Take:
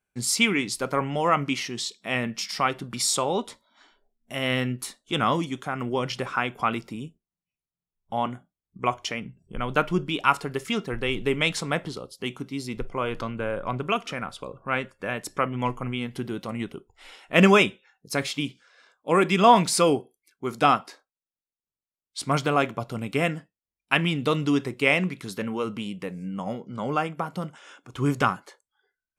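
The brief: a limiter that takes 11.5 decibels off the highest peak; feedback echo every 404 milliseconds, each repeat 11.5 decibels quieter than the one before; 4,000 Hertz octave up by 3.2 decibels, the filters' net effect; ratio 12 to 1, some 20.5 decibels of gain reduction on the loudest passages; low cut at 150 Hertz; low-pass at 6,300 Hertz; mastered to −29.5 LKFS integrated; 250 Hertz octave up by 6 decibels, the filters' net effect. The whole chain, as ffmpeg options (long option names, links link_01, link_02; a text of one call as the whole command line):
ffmpeg -i in.wav -af "highpass=150,lowpass=6300,equalizer=frequency=250:width_type=o:gain=8.5,equalizer=frequency=4000:width_type=o:gain=5,acompressor=threshold=-29dB:ratio=12,alimiter=limit=-24dB:level=0:latency=1,aecho=1:1:404|808|1212:0.266|0.0718|0.0194,volume=6.5dB" out.wav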